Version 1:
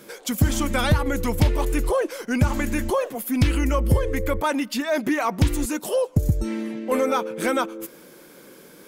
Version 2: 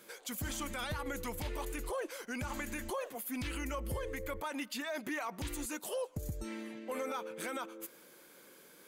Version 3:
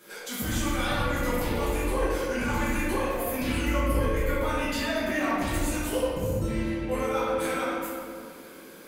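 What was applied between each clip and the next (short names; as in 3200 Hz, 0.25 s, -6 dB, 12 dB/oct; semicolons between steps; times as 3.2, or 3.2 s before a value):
low shelf 500 Hz -10 dB; notch 5400 Hz, Q 15; limiter -22 dBFS, peak gain reduction 9 dB; gain -8 dB
reverb RT60 2.1 s, pre-delay 5 ms, DRR -11 dB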